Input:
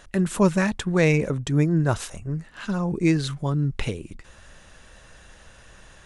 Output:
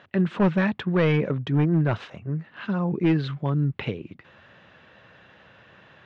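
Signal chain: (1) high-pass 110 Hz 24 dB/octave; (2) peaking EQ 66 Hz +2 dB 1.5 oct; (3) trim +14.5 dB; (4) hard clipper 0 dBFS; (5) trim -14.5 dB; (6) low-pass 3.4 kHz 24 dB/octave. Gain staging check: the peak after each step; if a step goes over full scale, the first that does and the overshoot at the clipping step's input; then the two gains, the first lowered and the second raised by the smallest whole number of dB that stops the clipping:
-5.0 dBFS, -5.0 dBFS, +9.5 dBFS, 0.0 dBFS, -14.5 dBFS, -13.0 dBFS; step 3, 9.5 dB; step 3 +4.5 dB, step 5 -4.5 dB

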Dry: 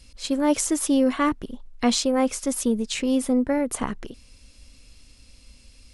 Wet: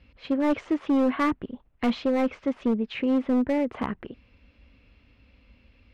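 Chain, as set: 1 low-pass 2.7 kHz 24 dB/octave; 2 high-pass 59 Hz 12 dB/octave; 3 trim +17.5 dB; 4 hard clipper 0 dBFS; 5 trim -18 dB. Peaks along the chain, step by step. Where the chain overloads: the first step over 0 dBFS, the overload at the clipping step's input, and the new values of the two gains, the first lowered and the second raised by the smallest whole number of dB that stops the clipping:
-8.0 dBFS, -8.0 dBFS, +9.5 dBFS, 0.0 dBFS, -18.0 dBFS; step 3, 9.5 dB; step 3 +7.5 dB, step 5 -8 dB

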